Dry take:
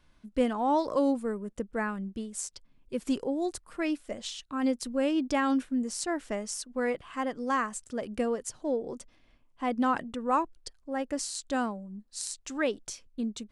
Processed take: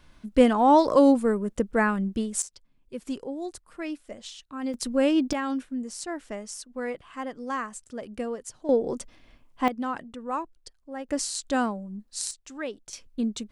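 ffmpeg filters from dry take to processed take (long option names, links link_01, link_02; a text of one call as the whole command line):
ffmpeg -i in.wav -af "asetnsamples=nb_out_samples=441:pad=0,asendcmd='2.42 volume volume -3.5dB;4.74 volume volume 5.5dB;5.33 volume volume -2.5dB;8.69 volume volume 8dB;9.68 volume volume -4dB;11.09 volume volume 4.5dB;12.31 volume volume -5dB;12.93 volume volume 5dB',volume=8.5dB" out.wav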